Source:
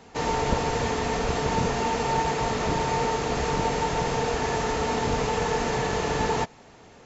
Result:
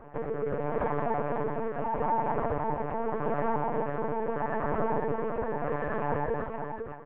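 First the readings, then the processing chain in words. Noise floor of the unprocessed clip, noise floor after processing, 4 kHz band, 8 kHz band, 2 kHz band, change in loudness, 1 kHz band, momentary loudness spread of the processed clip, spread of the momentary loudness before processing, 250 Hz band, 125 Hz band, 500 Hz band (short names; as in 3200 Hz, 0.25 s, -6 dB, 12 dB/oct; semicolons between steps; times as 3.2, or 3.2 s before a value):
-51 dBFS, -39 dBFS, under -25 dB, n/a, -9.0 dB, -5.5 dB, -5.0 dB, 4 LU, 1 LU, -4.5 dB, -7.0 dB, -3.0 dB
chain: HPF 290 Hz 12 dB/oct; reverb removal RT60 1.6 s; LPF 1600 Hz 24 dB/oct; comb 6.9 ms, depth 74%; in parallel at 0 dB: limiter -24 dBFS, peak gain reduction 9.5 dB; on the sum: compressor 2.5:1, threshold -27 dBFS, peak gain reduction 6.5 dB; rotary speaker horn 0.8 Hz; on a send: tapped delay 0.127/0.505/0.871 s -7/-5.5/-16.5 dB; on the sum: LPC vocoder at 8 kHz pitch kept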